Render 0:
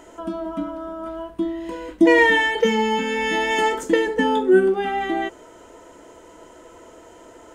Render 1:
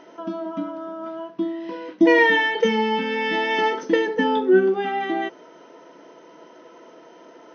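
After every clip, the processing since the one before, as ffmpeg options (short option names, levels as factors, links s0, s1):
-af "afftfilt=real='re*between(b*sr/4096,130,6300)':imag='im*between(b*sr/4096,130,6300)':win_size=4096:overlap=0.75,volume=0.891"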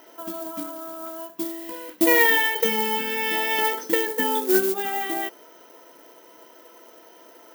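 -af "aeval=exprs='0.631*(cos(1*acos(clip(val(0)/0.631,-1,1)))-cos(1*PI/2))+0.0631*(cos(2*acos(clip(val(0)/0.631,-1,1)))-cos(2*PI/2))':c=same,acrusher=bits=5:mode=log:mix=0:aa=0.000001,aemphasis=mode=production:type=bsi,volume=0.708"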